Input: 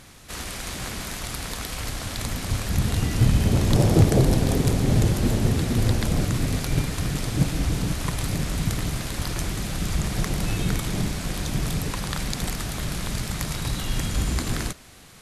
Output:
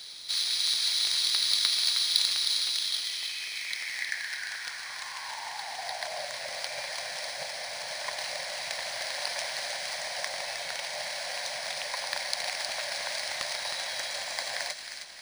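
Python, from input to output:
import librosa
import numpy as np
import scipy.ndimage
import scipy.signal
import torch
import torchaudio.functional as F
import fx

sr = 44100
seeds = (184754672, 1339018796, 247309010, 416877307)

y = fx.low_shelf(x, sr, hz=85.0, db=-12.0)
y = fx.quant_dither(y, sr, seeds[0], bits=10, dither='none')
y = fx.rider(y, sr, range_db=4, speed_s=0.5)
y = fx.tone_stack(y, sr, knobs='10-0-10')
y = fx.notch(y, sr, hz=3600.0, q=9.6)
y = fx.filter_sweep_highpass(y, sr, from_hz=3700.0, to_hz=570.0, start_s=2.75, end_s=6.34, q=5.5)
y = fx.fixed_phaser(y, sr, hz=1900.0, stages=8)
y = fx.echo_wet_highpass(y, sr, ms=313, feedback_pct=45, hz=1800.0, wet_db=-6)
y = np.interp(np.arange(len(y)), np.arange(len(y))[::3], y[::3])
y = y * 10.0 ** (4.5 / 20.0)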